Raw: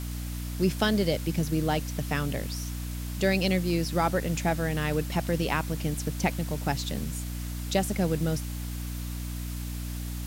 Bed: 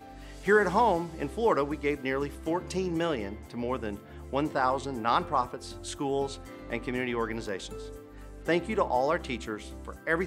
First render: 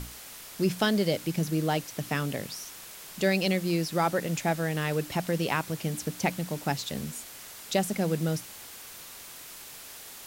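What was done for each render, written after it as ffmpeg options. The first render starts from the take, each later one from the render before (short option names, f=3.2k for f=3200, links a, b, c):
-af "bandreject=f=60:t=h:w=6,bandreject=f=120:t=h:w=6,bandreject=f=180:t=h:w=6,bandreject=f=240:t=h:w=6,bandreject=f=300:t=h:w=6"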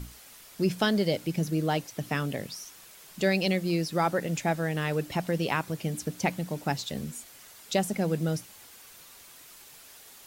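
-af "afftdn=nr=7:nf=-45"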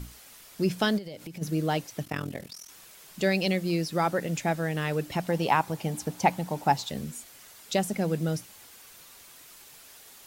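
-filter_complex "[0:a]asplit=3[a][b][c];[a]afade=t=out:st=0.97:d=0.02[d];[b]acompressor=threshold=-36dB:ratio=10:attack=3.2:release=140:knee=1:detection=peak,afade=t=in:st=0.97:d=0.02,afade=t=out:st=1.41:d=0.02[e];[c]afade=t=in:st=1.41:d=0.02[f];[d][e][f]amix=inputs=3:normalize=0,asplit=3[g][h][i];[g]afade=t=out:st=2.03:d=0.02[j];[h]tremolo=f=42:d=0.919,afade=t=in:st=2.03:d=0.02,afade=t=out:st=2.68:d=0.02[k];[i]afade=t=in:st=2.68:d=0.02[l];[j][k][l]amix=inputs=3:normalize=0,asettb=1/sr,asplit=3[m][n][o];[m]atrim=end=5.294[p];[n]atrim=start=5.29:end=6.9,asetpts=PTS-STARTPTS,afade=t=in:d=0.004:c=qsin,afade=t=out:st=1.606:d=0.004:c=qsin,equalizer=f=850:t=o:w=0.59:g=11.5[q];[o]atrim=start=6.896[r];[p][q]acrossfade=d=0.004:c1=hsin:c2=qsin[s];[s][r]acrossfade=d=0.004:c1=qsin:c2=hsin"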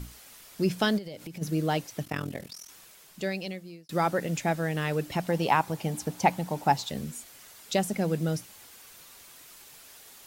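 -filter_complex "[0:a]asplit=2[a][b];[a]atrim=end=3.89,asetpts=PTS-STARTPTS,afade=t=out:st=2.63:d=1.26[c];[b]atrim=start=3.89,asetpts=PTS-STARTPTS,afade=t=in:d=0.004:c=hsin[d];[c][d]concat=n=2:v=0:a=1"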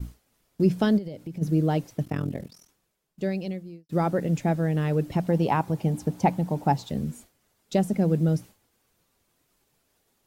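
-af "agate=range=-33dB:threshold=-40dB:ratio=3:detection=peak,tiltshelf=f=710:g=7.5"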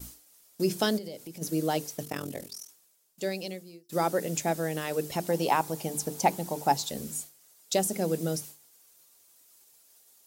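-af "bass=f=250:g=-13,treble=f=4k:g=15,bandreject=f=50:t=h:w=6,bandreject=f=100:t=h:w=6,bandreject=f=150:t=h:w=6,bandreject=f=200:t=h:w=6,bandreject=f=250:t=h:w=6,bandreject=f=300:t=h:w=6,bandreject=f=350:t=h:w=6,bandreject=f=400:t=h:w=6,bandreject=f=450:t=h:w=6"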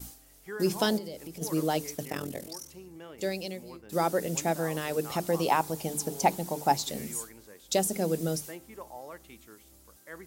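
-filter_complex "[1:a]volume=-17.5dB[a];[0:a][a]amix=inputs=2:normalize=0"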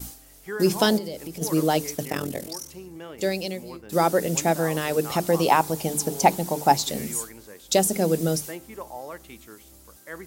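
-af "volume=6.5dB"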